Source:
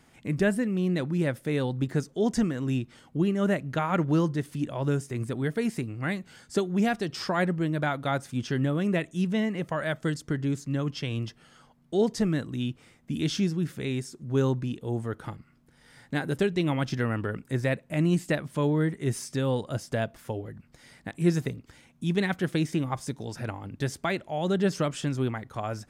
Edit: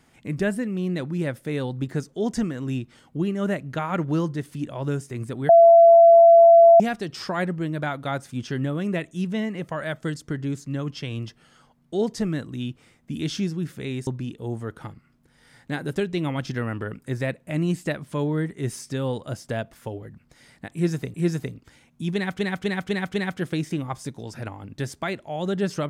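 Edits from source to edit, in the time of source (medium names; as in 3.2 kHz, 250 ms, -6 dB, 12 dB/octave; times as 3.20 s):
5.49–6.80 s: bleep 674 Hz -8 dBFS
14.07–14.50 s: delete
21.16–21.57 s: loop, 2 plays
22.16–22.41 s: loop, 5 plays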